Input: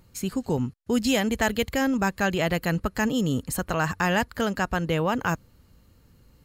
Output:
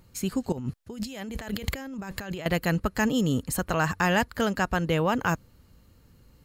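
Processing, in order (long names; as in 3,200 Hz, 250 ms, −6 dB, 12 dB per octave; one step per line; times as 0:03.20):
0:00.52–0:02.46: compressor whose output falls as the input rises −35 dBFS, ratio −1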